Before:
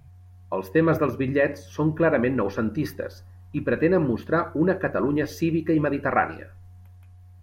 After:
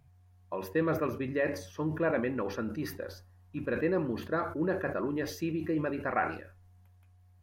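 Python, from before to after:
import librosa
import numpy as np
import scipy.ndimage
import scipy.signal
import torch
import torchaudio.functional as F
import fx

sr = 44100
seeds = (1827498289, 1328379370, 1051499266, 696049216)

y = fx.low_shelf(x, sr, hz=140.0, db=-6.0)
y = fx.sustainer(y, sr, db_per_s=94.0)
y = y * librosa.db_to_amplitude(-8.5)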